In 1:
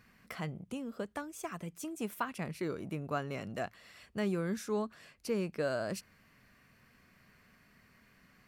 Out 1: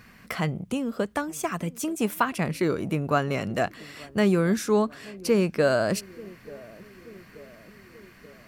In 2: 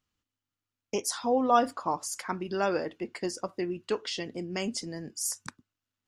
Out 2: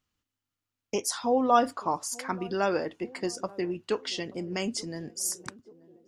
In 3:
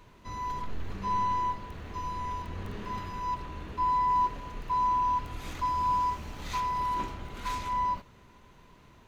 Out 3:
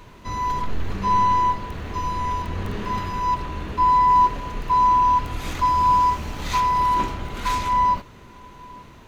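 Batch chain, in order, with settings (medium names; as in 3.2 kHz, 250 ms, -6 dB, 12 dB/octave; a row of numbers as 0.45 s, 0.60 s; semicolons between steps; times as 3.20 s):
band-passed feedback delay 882 ms, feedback 65%, band-pass 340 Hz, level -20 dB; peak normalisation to -9 dBFS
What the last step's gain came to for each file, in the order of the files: +12.0 dB, +1.0 dB, +10.0 dB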